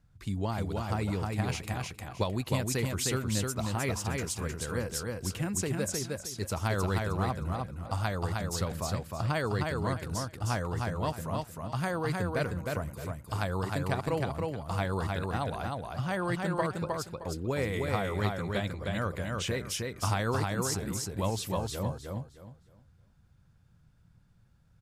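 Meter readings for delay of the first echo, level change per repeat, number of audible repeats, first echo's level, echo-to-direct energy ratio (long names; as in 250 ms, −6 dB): 310 ms, −12.0 dB, 3, −3.0 dB, −2.5 dB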